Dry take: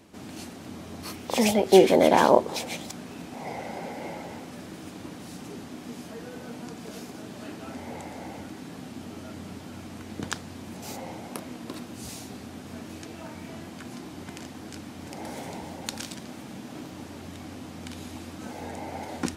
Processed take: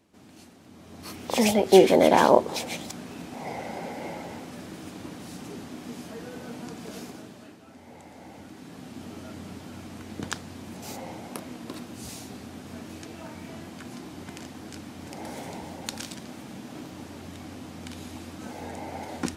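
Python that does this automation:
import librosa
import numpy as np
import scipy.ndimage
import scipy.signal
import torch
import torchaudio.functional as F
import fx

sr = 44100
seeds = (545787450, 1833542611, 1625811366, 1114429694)

y = fx.gain(x, sr, db=fx.line((0.69, -10.5), (1.24, 0.5), (7.07, 0.5), (7.64, -12.0), (9.05, -0.5)))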